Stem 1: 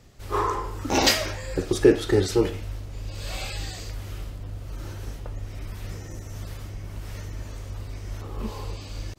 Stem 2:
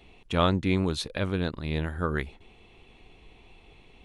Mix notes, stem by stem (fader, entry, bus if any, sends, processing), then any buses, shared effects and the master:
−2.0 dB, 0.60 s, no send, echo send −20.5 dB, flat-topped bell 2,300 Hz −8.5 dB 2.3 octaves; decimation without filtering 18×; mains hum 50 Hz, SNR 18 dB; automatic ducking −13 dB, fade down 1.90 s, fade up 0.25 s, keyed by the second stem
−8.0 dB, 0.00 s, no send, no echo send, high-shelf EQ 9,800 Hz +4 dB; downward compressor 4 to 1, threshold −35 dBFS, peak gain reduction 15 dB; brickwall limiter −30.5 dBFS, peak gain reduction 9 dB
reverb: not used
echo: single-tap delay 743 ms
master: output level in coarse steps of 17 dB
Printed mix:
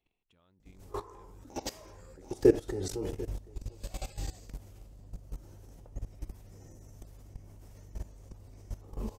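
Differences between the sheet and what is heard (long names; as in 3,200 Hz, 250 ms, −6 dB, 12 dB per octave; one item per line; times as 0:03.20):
stem 1: missing decimation without filtering 18×
stem 2 −8.0 dB → −16.0 dB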